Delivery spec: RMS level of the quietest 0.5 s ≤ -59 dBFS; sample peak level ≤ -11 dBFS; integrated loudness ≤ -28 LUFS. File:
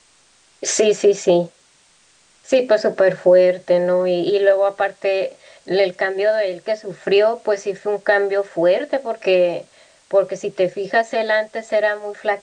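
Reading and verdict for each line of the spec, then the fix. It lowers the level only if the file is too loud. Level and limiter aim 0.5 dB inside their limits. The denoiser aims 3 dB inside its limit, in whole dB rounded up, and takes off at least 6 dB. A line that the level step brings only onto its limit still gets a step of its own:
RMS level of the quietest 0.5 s -55 dBFS: fail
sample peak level -4.5 dBFS: fail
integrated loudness -18.5 LUFS: fail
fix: gain -10 dB

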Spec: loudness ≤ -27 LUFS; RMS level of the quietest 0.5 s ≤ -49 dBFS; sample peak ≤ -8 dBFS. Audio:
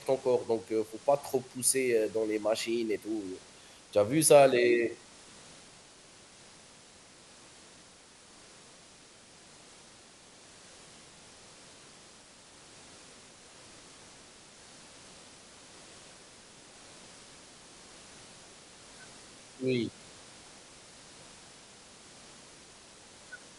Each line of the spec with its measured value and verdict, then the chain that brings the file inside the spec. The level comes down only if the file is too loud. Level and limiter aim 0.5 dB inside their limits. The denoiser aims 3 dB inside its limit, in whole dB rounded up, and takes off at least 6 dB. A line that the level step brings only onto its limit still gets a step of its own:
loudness -28.0 LUFS: OK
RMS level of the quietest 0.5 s -56 dBFS: OK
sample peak -8.5 dBFS: OK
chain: none

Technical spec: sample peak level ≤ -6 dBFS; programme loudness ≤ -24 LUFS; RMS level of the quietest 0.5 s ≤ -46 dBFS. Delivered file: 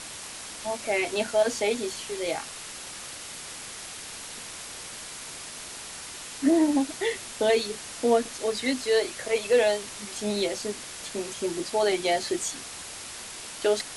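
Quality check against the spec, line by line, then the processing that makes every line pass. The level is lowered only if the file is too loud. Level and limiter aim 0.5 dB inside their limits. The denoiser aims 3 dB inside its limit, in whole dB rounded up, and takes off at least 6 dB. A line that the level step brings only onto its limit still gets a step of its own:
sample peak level -11.0 dBFS: OK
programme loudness -28.5 LUFS: OK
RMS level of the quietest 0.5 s -40 dBFS: fail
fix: denoiser 9 dB, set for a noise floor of -40 dBFS

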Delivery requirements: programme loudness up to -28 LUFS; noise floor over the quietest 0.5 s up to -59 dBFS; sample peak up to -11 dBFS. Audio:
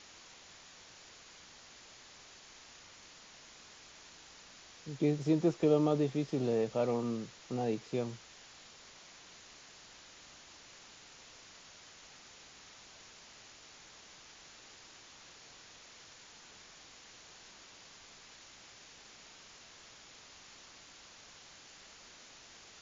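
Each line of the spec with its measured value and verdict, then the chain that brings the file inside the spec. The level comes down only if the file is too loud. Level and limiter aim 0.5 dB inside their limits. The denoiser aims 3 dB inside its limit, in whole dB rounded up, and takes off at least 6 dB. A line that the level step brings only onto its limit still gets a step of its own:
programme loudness -33.0 LUFS: OK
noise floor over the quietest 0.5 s -56 dBFS: fail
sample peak -16.0 dBFS: OK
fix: denoiser 6 dB, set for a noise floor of -56 dBFS

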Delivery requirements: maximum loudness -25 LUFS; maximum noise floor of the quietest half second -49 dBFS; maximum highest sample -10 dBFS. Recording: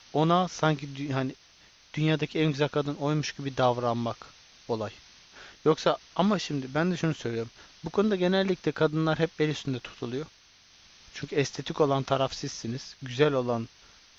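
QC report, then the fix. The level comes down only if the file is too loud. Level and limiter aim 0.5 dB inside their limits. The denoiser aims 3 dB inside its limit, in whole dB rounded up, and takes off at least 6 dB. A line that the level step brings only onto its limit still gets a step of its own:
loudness -28.5 LUFS: OK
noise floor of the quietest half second -58 dBFS: OK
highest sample -7.5 dBFS: fail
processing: limiter -10.5 dBFS

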